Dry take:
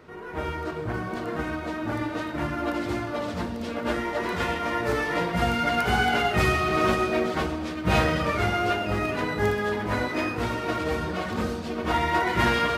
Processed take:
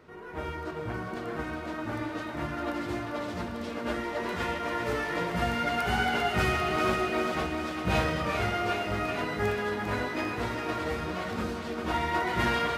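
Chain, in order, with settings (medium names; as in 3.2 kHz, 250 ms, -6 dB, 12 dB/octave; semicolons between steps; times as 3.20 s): on a send: thinning echo 398 ms, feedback 66%, level -7 dB; on the sum: trim -5 dB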